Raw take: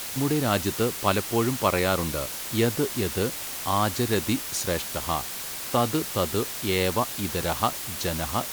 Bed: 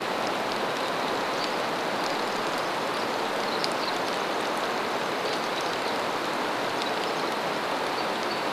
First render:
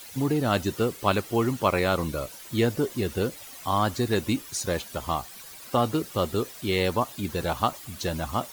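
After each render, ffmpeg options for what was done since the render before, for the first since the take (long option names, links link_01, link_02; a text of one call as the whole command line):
ffmpeg -i in.wav -af "afftdn=noise_reduction=13:noise_floor=-35" out.wav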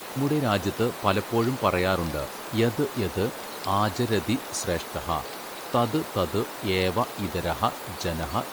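ffmpeg -i in.wav -i bed.wav -filter_complex "[1:a]volume=-10dB[link_01];[0:a][link_01]amix=inputs=2:normalize=0" out.wav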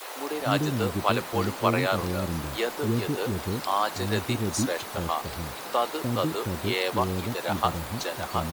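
ffmpeg -i in.wav -filter_complex "[0:a]acrossover=split=380[link_01][link_02];[link_01]adelay=300[link_03];[link_03][link_02]amix=inputs=2:normalize=0" out.wav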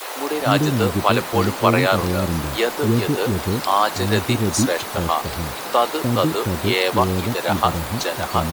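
ffmpeg -i in.wav -af "volume=8dB,alimiter=limit=-2dB:level=0:latency=1" out.wav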